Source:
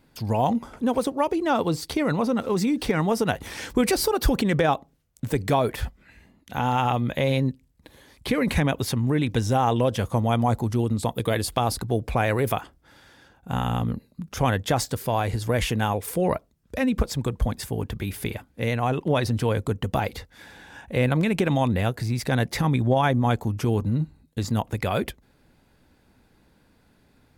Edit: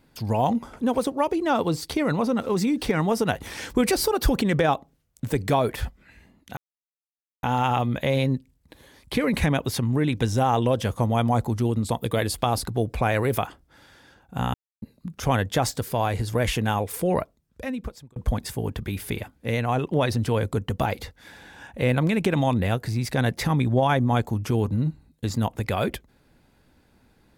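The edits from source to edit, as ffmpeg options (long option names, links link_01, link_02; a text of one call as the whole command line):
ffmpeg -i in.wav -filter_complex "[0:a]asplit=5[link_01][link_02][link_03][link_04][link_05];[link_01]atrim=end=6.57,asetpts=PTS-STARTPTS,afade=type=out:start_time=6.566:duration=0.004:curve=hsin,apad=pad_dur=0.86[link_06];[link_02]atrim=start=6.57:end=13.68,asetpts=PTS-STARTPTS,afade=type=in:duration=0.004:curve=hsin,afade=type=out:start_time=7.106:duration=0.004:curve=hsin[link_07];[link_03]atrim=start=13.68:end=13.96,asetpts=PTS-STARTPTS,volume=0[link_08];[link_04]atrim=start=13.96:end=17.3,asetpts=PTS-STARTPTS,afade=type=in:duration=0.004:curve=hsin,afade=type=out:start_time=2.32:duration=1.02[link_09];[link_05]atrim=start=17.3,asetpts=PTS-STARTPTS,afade=type=in:duration=0.004:curve=hsin[link_10];[link_06][link_07][link_08][link_09][link_10]concat=n=5:v=0:a=1" out.wav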